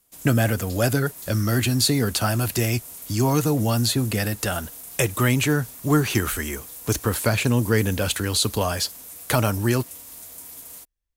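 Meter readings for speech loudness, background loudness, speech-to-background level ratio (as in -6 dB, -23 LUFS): -23.0 LUFS, -37.5 LUFS, 14.5 dB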